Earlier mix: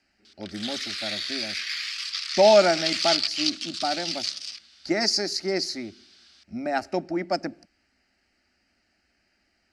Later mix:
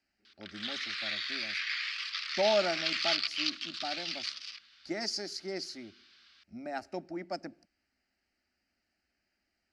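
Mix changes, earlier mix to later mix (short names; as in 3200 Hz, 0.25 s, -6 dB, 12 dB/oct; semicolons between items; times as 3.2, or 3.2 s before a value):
speech -11.5 dB; background: add LPF 3100 Hz 12 dB/oct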